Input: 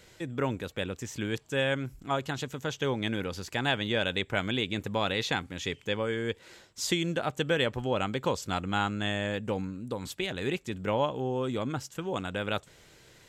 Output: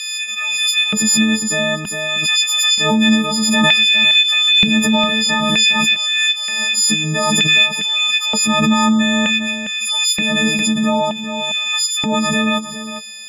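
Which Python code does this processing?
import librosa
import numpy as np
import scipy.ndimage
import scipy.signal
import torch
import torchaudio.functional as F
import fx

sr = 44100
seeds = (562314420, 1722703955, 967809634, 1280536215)

p1 = fx.freq_snap(x, sr, grid_st=6)
p2 = scipy.signal.sosfilt(scipy.signal.butter(2, 11000.0, 'lowpass', fs=sr, output='sos'), p1)
p3 = fx.peak_eq(p2, sr, hz=120.0, db=-5.0, octaves=0.28)
p4 = fx.notch(p3, sr, hz=430.0, q=12.0)
p5 = fx.over_compress(p4, sr, threshold_db=-28.0, ratio=-1.0)
p6 = p4 + F.gain(torch.from_numpy(p5), -1.0).numpy()
p7 = fx.filter_lfo_highpass(p6, sr, shape='square', hz=0.54, low_hz=210.0, high_hz=2800.0, q=3.1)
p8 = fx.graphic_eq_31(p7, sr, hz=(125, 200, 315), db=(-10, 7, -11))
p9 = p8 + fx.echo_single(p8, sr, ms=406, db=-11.0, dry=0)
p10 = fx.pre_swell(p9, sr, db_per_s=21.0)
y = F.gain(torch.from_numpy(p10), 3.0).numpy()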